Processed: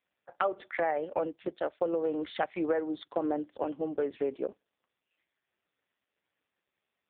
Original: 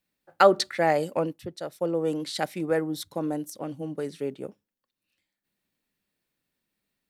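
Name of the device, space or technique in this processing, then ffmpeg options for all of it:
voicemail: -af "highpass=390,lowpass=2700,acompressor=threshold=-32dB:ratio=8,volume=7dB" -ar 8000 -c:a libopencore_amrnb -b:a 5150

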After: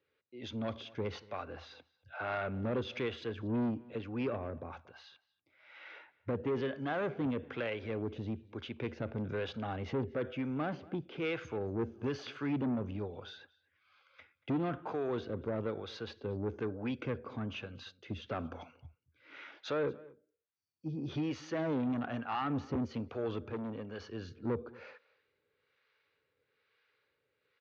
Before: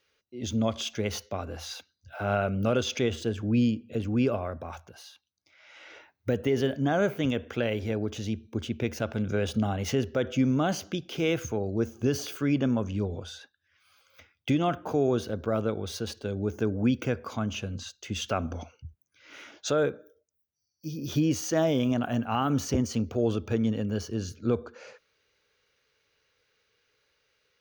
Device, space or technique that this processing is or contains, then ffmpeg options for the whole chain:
guitar amplifier with harmonic tremolo: -filter_complex "[0:a]asettb=1/sr,asplit=3[link_01][link_02][link_03];[link_01]atrim=end=9.934[link_04];[link_02]atrim=start=9.93:end=11.22,asetpts=PTS-STARTPTS,afade=type=in:duration=0.004:curve=qsin,afade=type=out:start_time=1.286:duration=0.004:curve=qsin,lowpass=frequency=2300:poles=1[link_05];[link_03]atrim=start=11.216[link_06];[link_04][link_05]acrossfade=duration=0.004:curve1=hsin:curve2=qsin[link_07];[link_07][link_06]acrossfade=duration=0.004:curve1=qsin:curve2=hsin,acrossover=split=590[link_08][link_09];[link_08]aeval=exprs='val(0)*(1-0.7/2+0.7/2*cos(2*PI*1.1*n/s))':channel_layout=same[link_10];[link_09]aeval=exprs='val(0)*(1-0.7/2-0.7/2*cos(2*PI*1.1*n/s))':channel_layout=same[link_11];[link_10][link_11]amix=inputs=2:normalize=0,asoftclip=type=tanh:threshold=-27.5dB,highpass=110,equalizer=frequency=200:width_type=q:width=4:gain=-5,equalizer=frequency=670:width_type=q:width=4:gain=-4,equalizer=frequency=3000:width_type=q:width=4:gain=-5,lowpass=frequency=3600:width=0.5412,lowpass=frequency=3600:width=1.3066,asettb=1/sr,asplit=3[link_12][link_13][link_14];[link_12]atrim=end=23.504[link_15];[link_13]atrim=start=23.5:end=24,asetpts=PTS-STARTPTS,afade=type=in:duration=0.004:curve=qsin,afade=type=out:start_time=0.496:duration=0.004:curve=qsin,lowshelf=frequency=340:gain=-8.5[link_16];[link_14]atrim=start=23.996[link_17];[link_15][link_16]acrossfade=duration=0.004:curve1=hsin:curve2=qsin[link_18];[link_18][link_17]acrossfade=duration=0.004:curve1=qsin:curve2=hsin,asplit=2[link_19][link_20];[link_20]adelay=233.2,volume=-22dB,highshelf=frequency=4000:gain=-5.25[link_21];[link_19][link_21]amix=inputs=2:normalize=0"

